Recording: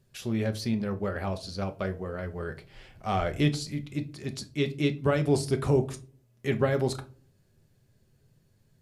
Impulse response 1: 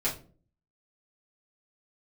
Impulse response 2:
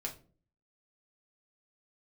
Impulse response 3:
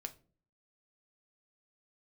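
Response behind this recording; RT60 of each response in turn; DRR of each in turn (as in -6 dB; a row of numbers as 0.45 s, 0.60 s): 3; no single decay rate, no single decay rate, no single decay rate; -8.5 dB, -1.0 dB, 6.5 dB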